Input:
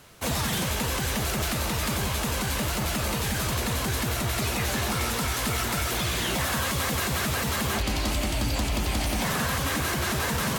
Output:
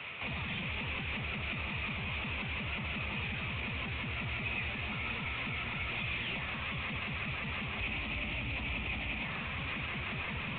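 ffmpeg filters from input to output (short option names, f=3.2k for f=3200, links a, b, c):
-filter_complex "[0:a]highpass=f=64:w=0.5412,highpass=f=64:w=1.3066,equalizer=f=1.9k:t=o:w=1.8:g=14,volume=24.5dB,asoftclip=hard,volume=-24.5dB,acrossover=split=270[a][b];[b]acompressor=threshold=-35dB:ratio=6[c];[a][c]amix=inputs=2:normalize=0,alimiter=level_in=6dB:limit=-24dB:level=0:latency=1,volume=-6dB,equalizer=f=315:t=o:w=0.33:g=-3,equalizer=f=1.6k:t=o:w=0.33:g=-11,equalizer=f=2.5k:t=o:w=0.33:g=11" -ar 8000 -c:a pcm_mulaw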